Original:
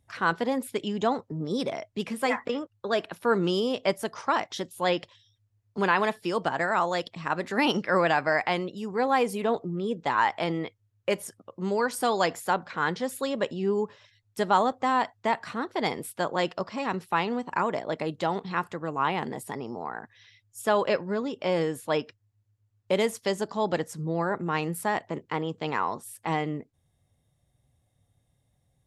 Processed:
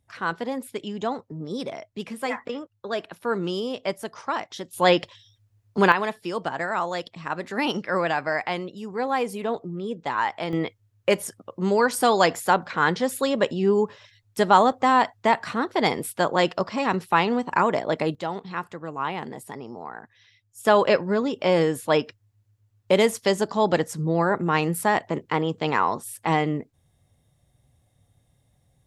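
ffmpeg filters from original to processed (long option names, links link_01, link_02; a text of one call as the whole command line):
ffmpeg -i in.wav -af "asetnsamples=nb_out_samples=441:pad=0,asendcmd='4.73 volume volume 7.5dB;5.92 volume volume -1dB;10.53 volume volume 6dB;18.15 volume volume -2dB;20.65 volume volume 6dB',volume=-2dB" out.wav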